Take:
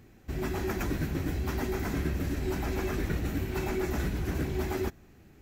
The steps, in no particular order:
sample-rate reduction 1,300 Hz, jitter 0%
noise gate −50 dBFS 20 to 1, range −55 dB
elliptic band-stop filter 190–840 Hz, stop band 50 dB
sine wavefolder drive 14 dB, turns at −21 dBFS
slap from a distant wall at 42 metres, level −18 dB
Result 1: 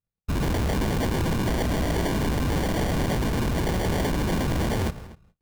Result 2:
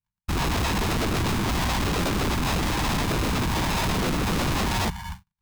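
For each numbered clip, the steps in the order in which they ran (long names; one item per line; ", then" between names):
noise gate, then elliptic band-stop filter, then sample-rate reduction, then sine wavefolder, then slap from a distant wall
sample-rate reduction, then slap from a distant wall, then noise gate, then elliptic band-stop filter, then sine wavefolder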